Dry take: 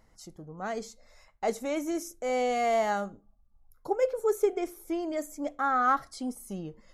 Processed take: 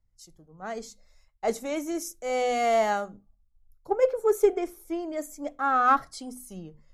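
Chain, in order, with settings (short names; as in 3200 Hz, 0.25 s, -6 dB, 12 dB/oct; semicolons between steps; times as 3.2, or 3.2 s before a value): notches 50/100/150/200/250 Hz; in parallel at -10 dB: one-sided clip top -26 dBFS; on the sum: three-band expander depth 70%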